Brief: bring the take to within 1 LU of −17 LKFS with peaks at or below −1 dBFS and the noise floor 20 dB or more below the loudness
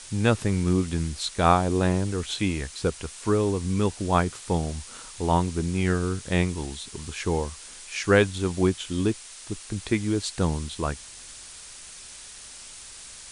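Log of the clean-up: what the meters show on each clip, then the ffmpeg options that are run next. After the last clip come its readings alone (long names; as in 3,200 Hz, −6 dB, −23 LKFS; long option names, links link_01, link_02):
background noise floor −44 dBFS; target noise floor −46 dBFS; integrated loudness −26.0 LKFS; sample peak −5.5 dBFS; target loudness −17.0 LKFS
→ -af "afftdn=noise_reduction=6:noise_floor=-44"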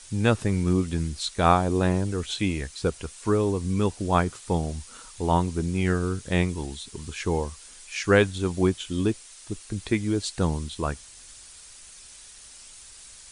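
background noise floor −47 dBFS; integrated loudness −26.0 LKFS; sample peak −5.5 dBFS; target loudness −17.0 LKFS
→ -af "volume=9dB,alimiter=limit=-1dB:level=0:latency=1"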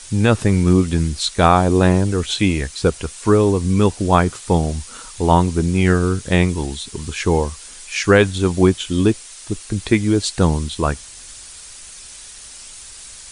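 integrated loudness −17.5 LKFS; sample peak −1.0 dBFS; background noise floor −38 dBFS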